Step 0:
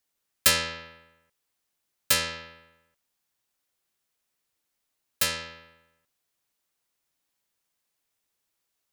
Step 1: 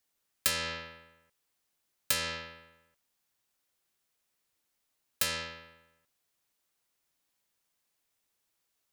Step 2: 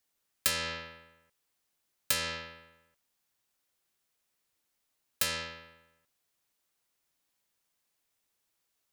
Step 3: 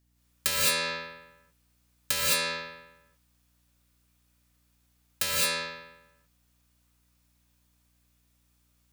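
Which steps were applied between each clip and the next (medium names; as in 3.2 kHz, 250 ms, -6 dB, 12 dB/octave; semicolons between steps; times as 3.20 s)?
compression 6:1, threshold -26 dBFS, peak gain reduction 11 dB
no audible change
gated-style reverb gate 240 ms rising, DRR -6 dB; hum 60 Hz, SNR 35 dB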